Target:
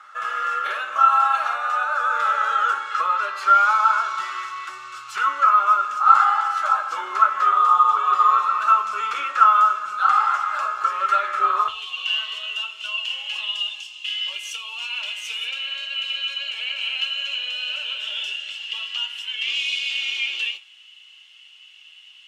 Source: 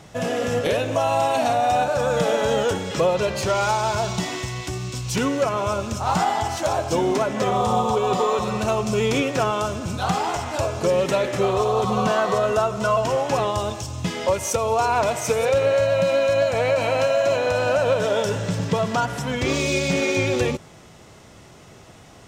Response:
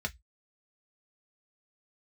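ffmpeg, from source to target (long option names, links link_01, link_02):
-filter_complex "[0:a]asetnsamples=nb_out_samples=441:pad=0,asendcmd='11.68 highpass f 2900',highpass=frequency=1300:width_type=q:width=15[link_01];[1:a]atrim=start_sample=2205,asetrate=26901,aresample=44100[link_02];[link_01][link_02]afir=irnorm=-1:irlink=0,volume=-11.5dB"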